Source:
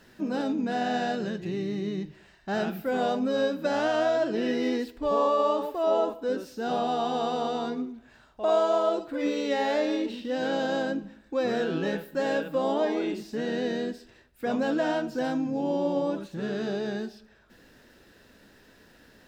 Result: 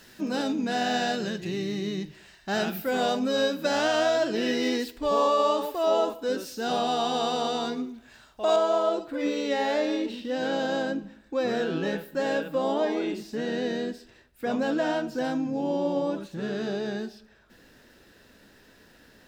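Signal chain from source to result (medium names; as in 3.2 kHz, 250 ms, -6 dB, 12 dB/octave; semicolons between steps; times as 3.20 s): treble shelf 2.4 kHz +11 dB, from 8.56 s +2 dB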